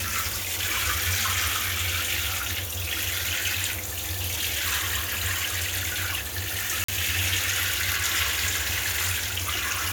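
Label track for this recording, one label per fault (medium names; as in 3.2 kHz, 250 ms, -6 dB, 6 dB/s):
6.840000	6.880000	dropout 44 ms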